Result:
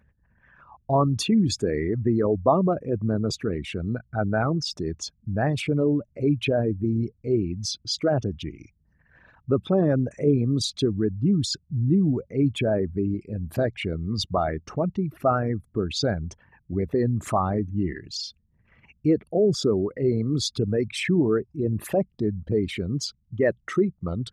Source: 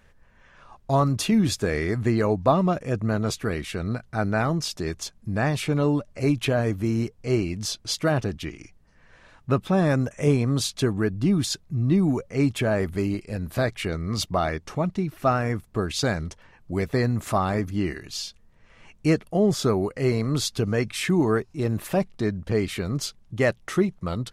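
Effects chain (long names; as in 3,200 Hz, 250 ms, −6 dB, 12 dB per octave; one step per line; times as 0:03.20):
spectral envelope exaggerated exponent 2
high-pass filter 55 Hz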